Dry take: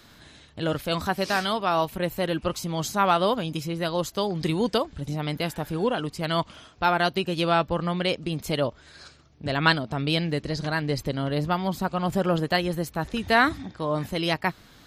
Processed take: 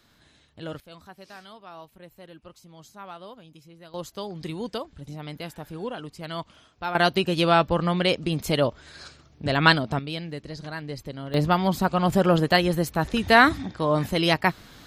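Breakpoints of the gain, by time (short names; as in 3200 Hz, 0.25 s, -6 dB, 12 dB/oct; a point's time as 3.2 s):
-9 dB
from 0.8 s -20 dB
from 3.94 s -8 dB
from 6.95 s +3 dB
from 9.99 s -8 dB
from 11.34 s +4 dB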